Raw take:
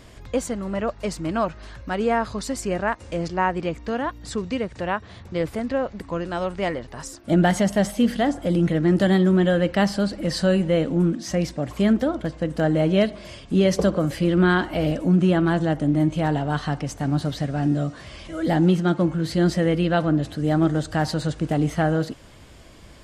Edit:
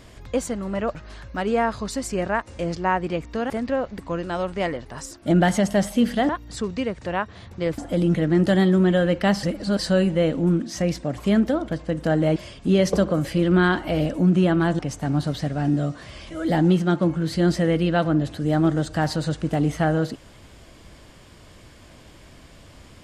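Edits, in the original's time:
0.95–1.48 s: delete
4.03–5.52 s: move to 8.31 s
9.96–10.32 s: reverse
12.89–13.22 s: delete
15.65–16.77 s: delete

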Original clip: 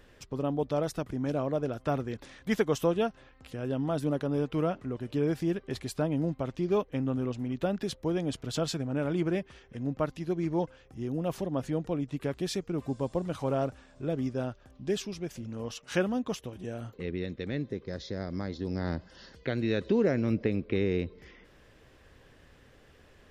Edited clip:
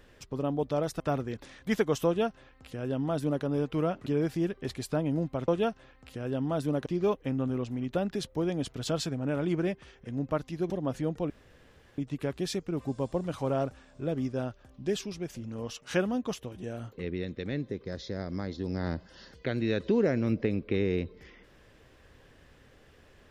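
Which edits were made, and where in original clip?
1.00–1.80 s: delete
2.86–4.24 s: copy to 6.54 s
4.86–5.12 s: delete
10.38–11.39 s: delete
11.99 s: insert room tone 0.68 s

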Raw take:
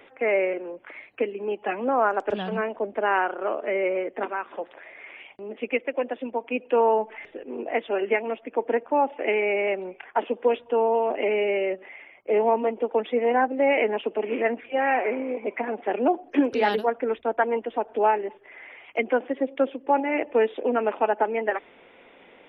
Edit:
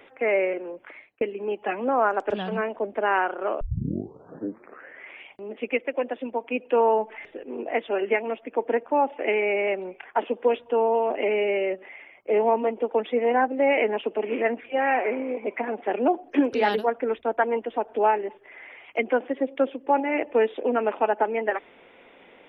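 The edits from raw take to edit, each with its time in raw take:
0.84–1.21 s: fade out
3.61 s: tape start 1.50 s

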